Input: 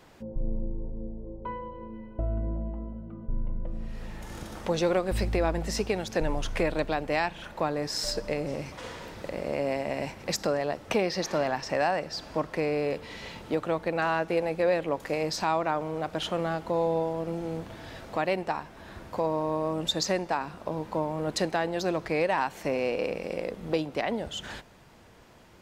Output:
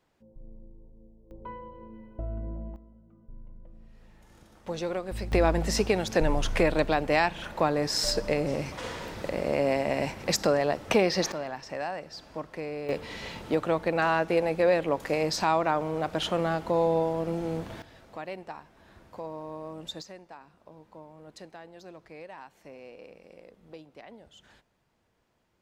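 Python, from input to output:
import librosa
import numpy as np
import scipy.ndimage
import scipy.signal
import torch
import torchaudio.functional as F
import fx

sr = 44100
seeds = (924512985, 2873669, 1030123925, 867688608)

y = fx.gain(x, sr, db=fx.steps((0.0, -17.5), (1.31, -5.0), (2.76, -16.0), (4.67, -6.5), (5.32, 3.5), (11.32, -7.5), (12.89, 2.0), (17.82, -10.5), (20.02, -18.5)))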